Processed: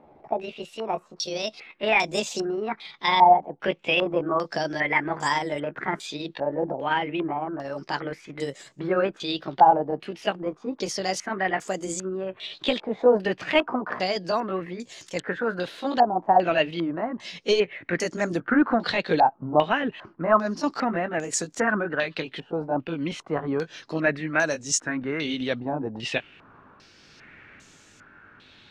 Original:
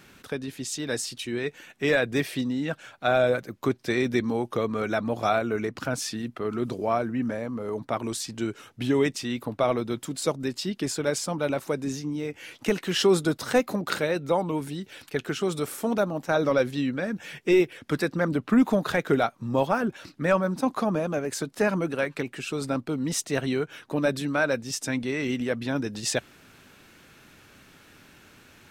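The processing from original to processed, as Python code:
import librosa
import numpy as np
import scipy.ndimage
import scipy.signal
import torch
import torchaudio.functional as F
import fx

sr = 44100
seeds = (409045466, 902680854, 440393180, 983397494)

y = fx.pitch_glide(x, sr, semitones=7.0, runs='ending unshifted')
y = fx.filter_held_lowpass(y, sr, hz=2.5, low_hz=820.0, high_hz=7000.0)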